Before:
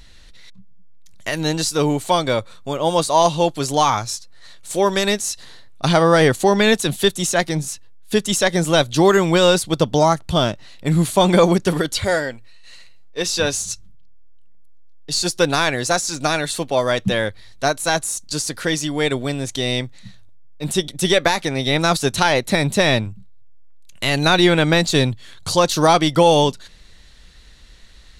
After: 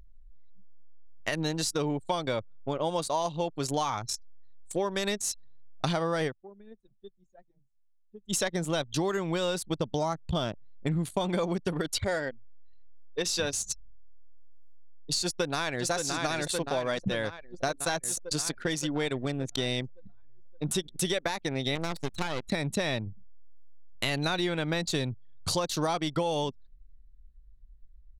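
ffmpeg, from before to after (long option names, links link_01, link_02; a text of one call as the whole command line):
ffmpeg -i in.wav -filter_complex "[0:a]asplit=2[link_01][link_02];[link_02]afade=type=in:start_time=15.22:duration=0.01,afade=type=out:start_time=15.9:duration=0.01,aecho=0:1:570|1140|1710|2280|2850|3420|3990|4560|5130|5700|6270|6840:0.421697|0.316272|0.237204|0.177903|0.133427|0.100071|0.0750529|0.0562897|0.0422173|0.0316629|0.0237472|0.0178104[link_03];[link_01][link_03]amix=inputs=2:normalize=0,asettb=1/sr,asplit=3[link_04][link_05][link_06];[link_04]atrim=end=21.754[link_07];[link_05]atrim=start=21.75:end=22.49,asetpts=PTS-STARTPTS,afade=type=in:duration=0.004:curve=qsin,afade=type=out:start_time=0.736:duration=0.004:curve=qsin,aeval=exprs='max(val(0),0)':channel_layout=same[link_08];[link_06]atrim=start=22.486[link_09];[link_07][link_08]acrossfade=duration=0.004:curve1=hsin:curve2=qsin[link_10];[link_10][link_09]acrossfade=duration=0.004:curve1=qsin:curve2=hsin,asplit=3[link_11][link_12][link_13];[link_11]atrim=end=6.69,asetpts=PTS-STARTPTS,afade=type=out:start_time=6.27:duration=0.42:curve=exp:silence=0.0891251[link_14];[link_12]atrim=start=6.69:end=7.93,asetpts=PTS-STARTPTS,volume=-21dB[link_15];[link_13]atrim=start=7.93,asetpts=PTS-STARTPTS,afade=type=in:duration=0.42:curve=exp:silence=0.0891251[link_16];[link_14][link_15][link_16]concat=n=3:v=0:a=1,anlmdn=398,acompressor=threshold=-23dB:ratio=6,volume=-3.5dB" out.wav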